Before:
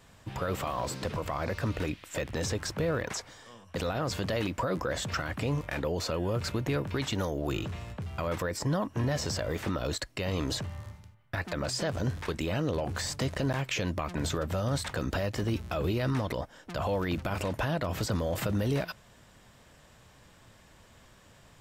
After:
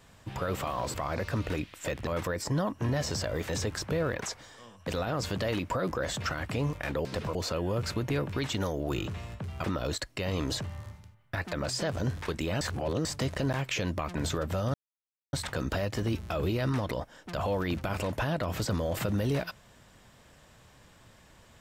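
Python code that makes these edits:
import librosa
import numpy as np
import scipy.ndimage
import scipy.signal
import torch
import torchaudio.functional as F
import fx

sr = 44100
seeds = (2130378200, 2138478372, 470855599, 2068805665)

y = fx.edit(x, sr, fx.move(start_s=0.94, length_s=0.3, to_s=5.93),
    fx.move(start_s=8.22, length_s=1.42, to_s=2.37),
    fx.reverse_span(start_s=12.61, length_s=0.44),
    fx.insert_silence(at_s=14.74, length_s=0.59), tone=tone)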